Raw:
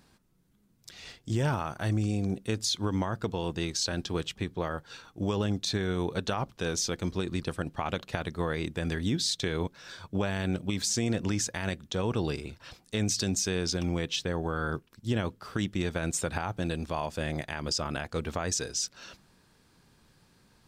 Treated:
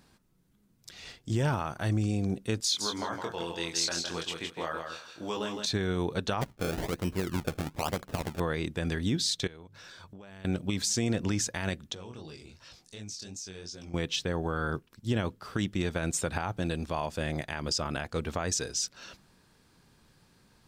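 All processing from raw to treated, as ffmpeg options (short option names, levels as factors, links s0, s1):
-filter_complex "[0:a]asettb=1/sr,asplit=3[s0][s1][s2];[s0]atrim=end=2.604[s3];[s1]atrim=start=2.6:end=5.66,asetpts=PTS-STARTPTS,afade=t=in:d=0.004:c=qsin,afade=t=out:st=3.056:d=0.004:c=qsin,highpass=f=690:p=1,asplit=2[s4][s5];[s5]adelay=24,volume=0.631[s6];[s4][s6]amix=inputs=2:normalize=0,atrim=end_sample=134946,aecho=1:1:163|326|489:0.531|0.0956|0.0172,atrim=end_sample=134946[s7];[s2]atrim=start=5.656[s8];[s3][s7]acrossfade=d=0.004:c1=hsin:c2=qsin[s9];[s9][s8]acrossfade=d=0.004:c1=qsin:c2=hsin,asettb=1/sr,asplit=3[s10][s11][s12];[s10]atrim=end=6.414[s13];[s11]atrim=start=6.41:end=8.4,asetpts=PTS-STARTPTS,afade=t=in:d=0.004:c=qsin,afade=t=out:st=1.986:d=0.004:c=qsin,highshelf=f=3900:g=-5,acrusher=samples=31:mix=1:aa=0.000001:lfo=1:lforange=31:lforate=1.1[s14];[s12]atrim=start=8.396[s15];[s13][s14]acrossfade=d=0.004:c1=hsin:c2=qsin[s16];[s16][s15]acrossfade=d=0.004:c1=qsin:c2=hsin,asettb=1/sr,asplit=3[s17][s18][s19];[s17]atrim=end=9.474[s20];[s18]atrim=start=9.47:end=10.45,asetpts=PTS-STARTPTS,afade=t=in:d=0.004:c=qsin,afade=t=out:st=0.976:d=0.004:c=qsin,bandreject=f=50:t=h:w=6,bandreject=f=100:t=h:w=6,bandreject=f=150:t=h:w=6,acompressor=threshold=0.00562:ratio=8:attack=3.2:release=140:knee=1:detection=peak[s21];[s19]atrim=start=10.446[s22];[s20][s21]acrossfade=d=0.004:c1=hsin:c2=qsin[s23];[s23][s22]acrossfade=d=0.004:c1=qsin:c2=hsin,asettb=1/sr,asplit=3[s24][s25][s26];[s24]atrim=end=11.944[s27];[s25]atrim=start=11.94:end=13.94,asetpts=PTS-STARTPTS,afade=t=in:d=0.004:c=qsin,afade=t=out:st=1.996:d=0.004:c=qsin,equalizer=f=5800:t=o:w=1.3:g=8.5,flanger=delay=18.5:depth=6.1:speed=2.7,acompressor=threshold=0.00282:ratio=2:attack=3.2:release=140:knee=1:detection=peak[s28];[s26]atrim=start=13.936[s29];[s27][s28]acrossfade=d=0.004:c1=hsin:c2=qsin[s30];[s30][s29]acrossfade=d=0.004:c1=qsin:c2=hsin"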